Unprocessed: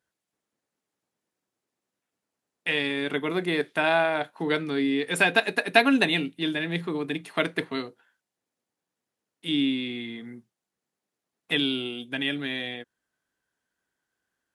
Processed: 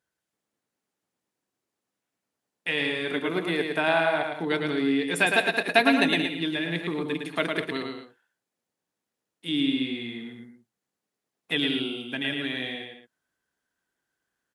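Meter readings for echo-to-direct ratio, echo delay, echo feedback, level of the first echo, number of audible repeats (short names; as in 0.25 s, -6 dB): -3.5 dB, 0.109 s, no steady repeat, -4.5 dB, 3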